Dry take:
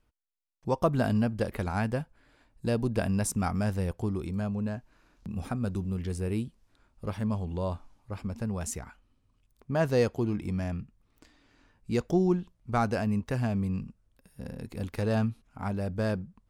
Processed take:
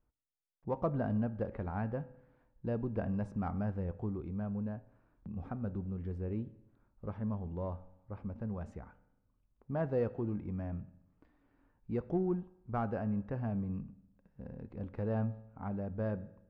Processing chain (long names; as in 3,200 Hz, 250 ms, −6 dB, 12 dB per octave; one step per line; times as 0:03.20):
low-pass filter 1,300 Hz 12 dB per octave
in parallel at −11.5 dB: soft clipping −25.5 dBFS, distortion −11 dB
on the sum: convolution reverb RT60 0.85 s, pre-delay 3 ms, DRR 13.5 dB
level −8.5 dB